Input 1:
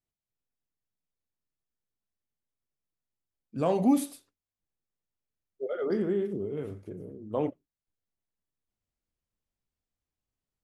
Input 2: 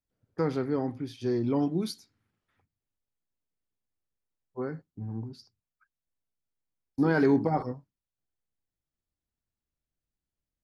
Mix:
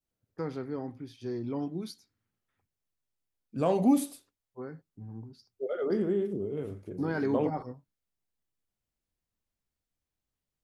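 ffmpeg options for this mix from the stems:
-filter_complex "[0:a]adynamicequalizer=threshold=0.00447:dfrequency=1800:dqfactor=0.87:tfrequency=1800:tqfactor=0.87:attack=5:release=100:ratio=0.375:range=2.5:mode=cutabove:tftype=bell,volume=1[s0];[1:a]volume=0.447[s1];[s0][s1]amix=inputs=2:normalize=0"

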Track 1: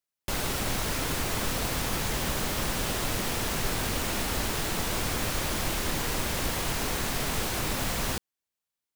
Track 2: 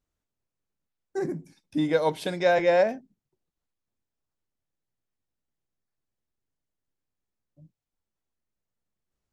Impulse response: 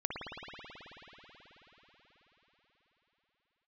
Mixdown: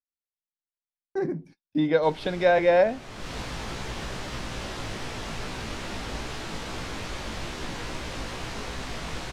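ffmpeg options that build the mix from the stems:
-filter_complex "[0:a]flanger=delay=15.5:depth=3.2:speed=2.4,adelay=1750,volume=0.794,asplit=2[s0][s1];[s1]volume=0.126[s2];[1:a]equalizer=f=7300:t=o:w=0.52:g=-12.5,volume=1.19,asplit=2[s3][s4];[s4]apad=whole_len=471914[s5];[s0][s5]sidechaincompress=threshold=0.0158:ratio=8:attack=16:release=362[s6];[2:a]atrim=start_sample=2205[s7];[s2][s7]afir=irnorm=-1:irlink=0[s8];[s6][s3][s8]amix=inputs=3:normalize=0,agate=range=0.0316:threshold=0.00355:ratio=16:detection=peak,lowpass=5600"

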